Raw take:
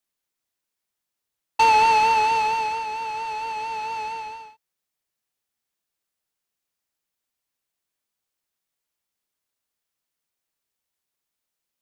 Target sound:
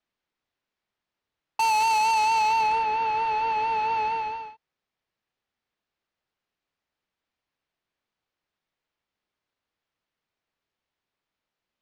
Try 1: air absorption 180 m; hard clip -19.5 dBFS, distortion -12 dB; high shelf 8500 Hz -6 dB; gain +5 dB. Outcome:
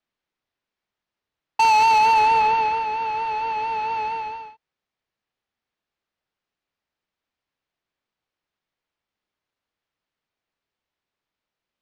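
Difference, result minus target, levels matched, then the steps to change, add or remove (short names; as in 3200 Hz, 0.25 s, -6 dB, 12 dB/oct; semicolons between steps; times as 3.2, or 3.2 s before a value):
hard clip: distortion -7 dB
change: hard clip -26 dBFS, distortion -6 dB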